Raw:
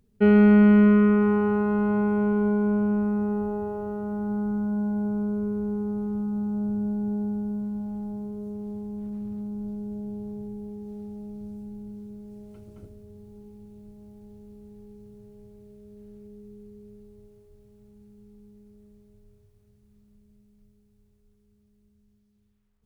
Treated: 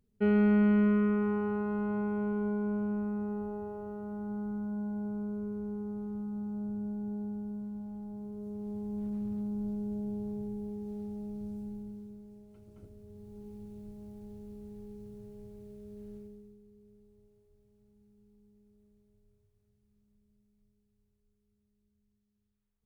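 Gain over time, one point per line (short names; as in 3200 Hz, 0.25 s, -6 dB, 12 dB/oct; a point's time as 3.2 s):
8.07 s -9 dB
8.98 s -1.5 dB
11.68 s -1.5 dB
12.48 s -10.5 dB
13.53 s +0.5 dB
16.16 s +0.5 dB
16.61 s -12 dB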